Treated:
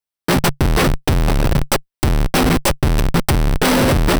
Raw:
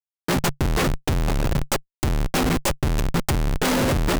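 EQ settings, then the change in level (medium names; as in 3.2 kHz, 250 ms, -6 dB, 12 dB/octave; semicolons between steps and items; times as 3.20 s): band-stop 6.8 kHz, Q 7; +6.5 dB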